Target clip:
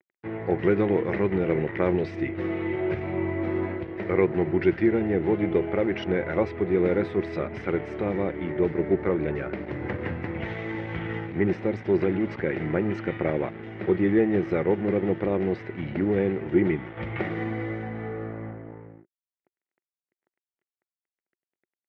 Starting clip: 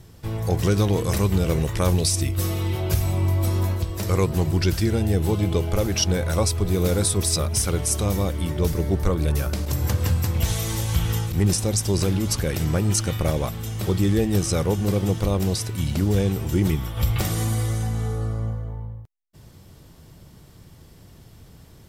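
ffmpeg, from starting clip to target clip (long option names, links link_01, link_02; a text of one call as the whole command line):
ffmpeg -i in.wav -af "aeval=exprs='sgn(val(0))*max(abs(val(0))-0.0126,0)':channel_layout=same,highpass=200,equalizer=frequency=360:width_type=q:width=4:gain=8,equalizer=frequency=1100:width_type=q:width=4:gain=-6,equalizer=frequency=2000:width_type=q:width=4:gain=9,lowpass=frequency=2200:width=0.5412,lowpass=frequency=2200:width=1.3066" out.wav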